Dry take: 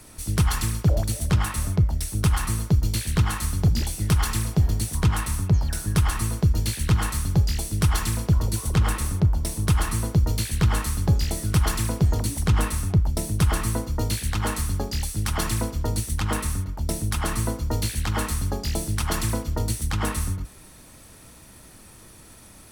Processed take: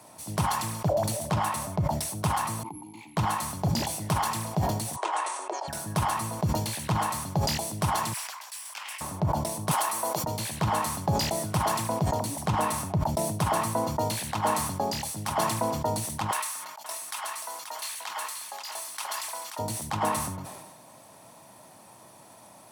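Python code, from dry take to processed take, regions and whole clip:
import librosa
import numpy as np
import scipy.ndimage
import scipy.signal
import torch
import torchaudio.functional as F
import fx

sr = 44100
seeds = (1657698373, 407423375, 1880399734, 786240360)

y = fx.chain(x, sr, fx.resample_bad(factor=4, down='filtered', up='zero_stuff'),
    fx.over_compress(threshold_db=-18.0, ratio=-1.0),
    fx.vowel_filter(vowel='u'), at=(2.63, 3.17))
y = fx.chain(y, sr, fx.cheby1_bandpass(low_hz=350.0, high_hz=9400.0, order=5),
    fx.peak_eq(hz=5000.0, db=-4.0, octaves=0.56), at=(4.96, 5.68))
y = fx.chain(y, sr, fx.lower_of_two(delay_ms=0.38),
    fx.highpass(hz=1300.0, slope=24),
    fx.doppler_dist(depth_ms=0.55), at=(8.13, 9.01))
y = fx.chain(y, sr, fx.highpass(hz=470.0, slope=12),
    fx.high_shelf(hz=7700.0, db=8.5),
    fx.band_squash(depth_pct=100), at=(9.71, 10.24))
y = fx.chain(y, sr, fx.highpass(hz=1500.0, slope=12),
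    fx.echo_single(ms=532, db=-7.5), at=(16.31, 19.59))
y = scipy.signal.sosfilt(scipy.signal.butter(4, 120.0, 'highpass', fs=sr, output='sos'), y)
y = fx.band_shelf(y, sr, hz=780.0, db=12.0, octaves=1.1)
y = fx.sustainer(y, sr, db_per_s=38.0)
y = F.gain(torch.from_numpy(y), -5.5).numpy()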